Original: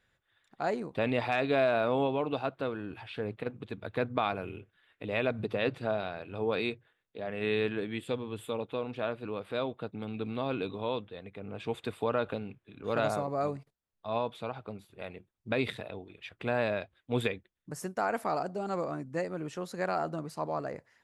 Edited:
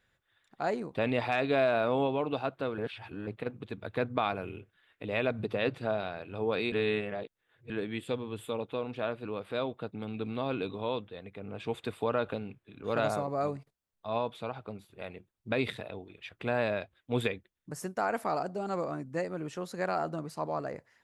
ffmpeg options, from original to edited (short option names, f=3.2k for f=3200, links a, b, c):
-filter_complex "[0:a]asplit=5[a][b][c][d][e];[a]atrim=end=2.782[f];[b]atrim=start=2.778:end=3.272,asetpts=PTS-STARTPTS,areverse[g];[c]atrim=start=3.268:end=6.722[h];[d]atrim=start=6.718:end=7.702,asetpts=PTS-STARTPTS,areverse[i];[e]atrim=start=7.698[j];[f][g]acrossfade=d=0.004:c1=hsin:c2=hsin[k];[k][h]acrossfade=d=0.004:c1=hsin:c2=hsin[l];[l][i]acrossfade=d=0.004:c1=hsin:c2=hsin[m];[m][j]acrossfade=d=0.004:c1=hsin:c2=hsin"